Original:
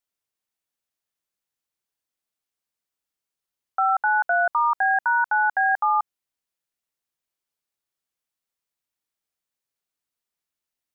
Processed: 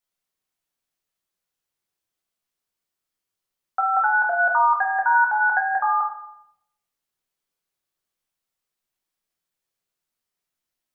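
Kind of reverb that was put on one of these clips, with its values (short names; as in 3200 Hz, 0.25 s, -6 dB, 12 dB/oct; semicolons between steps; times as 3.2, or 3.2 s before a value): shoebox room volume 200 m³, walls mixed, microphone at 1 m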